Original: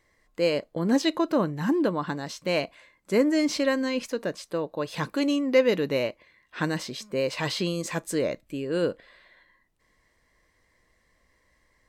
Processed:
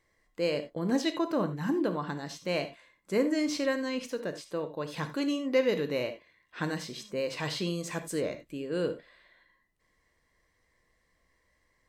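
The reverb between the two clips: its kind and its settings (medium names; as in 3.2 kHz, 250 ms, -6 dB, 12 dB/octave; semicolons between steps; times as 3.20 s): gated-style reverb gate 110 ms flat, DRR 8.5 dB; trim -5.5 dB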